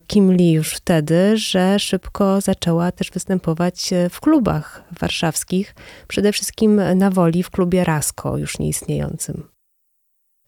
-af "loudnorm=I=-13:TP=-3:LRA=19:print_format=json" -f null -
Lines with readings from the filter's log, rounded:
"input_i" : "-18.6",
"input_tp" : "-2.3",
"input_lra" : "5.7",
"input_thresh" : "-29.3",